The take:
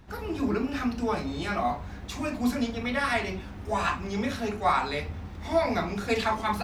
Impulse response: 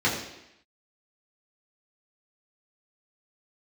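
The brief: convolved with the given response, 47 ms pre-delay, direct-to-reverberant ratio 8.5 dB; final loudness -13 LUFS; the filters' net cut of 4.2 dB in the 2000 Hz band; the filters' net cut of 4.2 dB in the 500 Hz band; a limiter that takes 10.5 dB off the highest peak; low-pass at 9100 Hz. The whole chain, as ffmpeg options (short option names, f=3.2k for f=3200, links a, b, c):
-filter_complex "[0:a]lowpass=9.1k,equalizer=f=500:t=o:g=-5.5,equalizer=f=2k:t=o:g=-5,alimiter=level_in=2dB:limit=-24dB:level=0:latency=1,volume=-2dB,asplit=2[a][b];[1:a]atrim=start_sample=2205,adelay=47[c];[b][c]afir=irnorm=-1:irlink=0,volume=-23dB[d];[a][d]amix=inputs=2:normalize=0,volume=21.5dB"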